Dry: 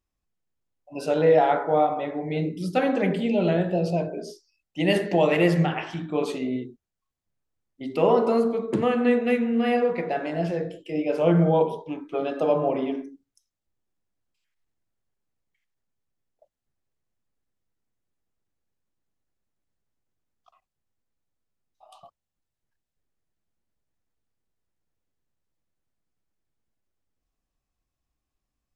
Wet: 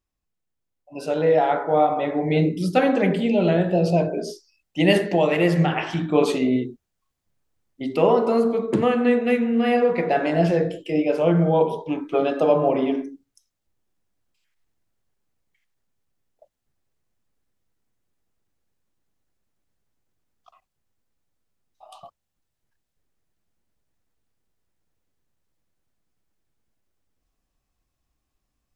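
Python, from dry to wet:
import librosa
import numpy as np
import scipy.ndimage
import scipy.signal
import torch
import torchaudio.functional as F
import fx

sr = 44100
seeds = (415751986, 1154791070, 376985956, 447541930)

y = fx.rider(x, sr, range_db=4, speed_s=0.5)
y = F.gain(torch.from_numpy(y), 3.5).numpy()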